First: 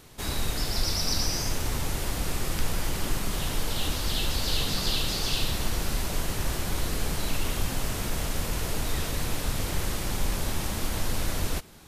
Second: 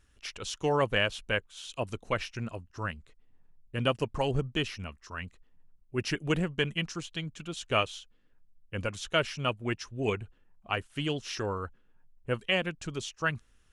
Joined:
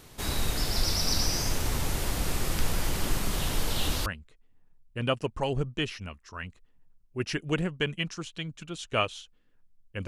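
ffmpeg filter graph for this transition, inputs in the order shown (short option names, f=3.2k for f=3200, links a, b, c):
-filter_complex "[0:a]apad=whole_dur=10.07,atrim=end=10.07,atrim=end=4.062[a];[1:a]atrim=start=2.838:end=8.85[b];[a][b]acrossfade=d=0.004:c1=hsin:c2=hsin"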